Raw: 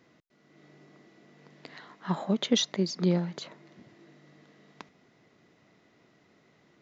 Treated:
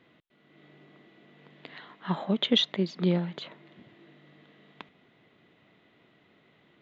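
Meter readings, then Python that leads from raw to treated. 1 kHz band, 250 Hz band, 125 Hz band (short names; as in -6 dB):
+0.5 dB, 0.0 dB, 0.0 dB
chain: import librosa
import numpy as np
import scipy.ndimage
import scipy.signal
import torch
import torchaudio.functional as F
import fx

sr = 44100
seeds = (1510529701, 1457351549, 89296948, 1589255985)

y = fx.high_shelf_res(x, sr, hz=4300.0, db=-8.5, q=3.0)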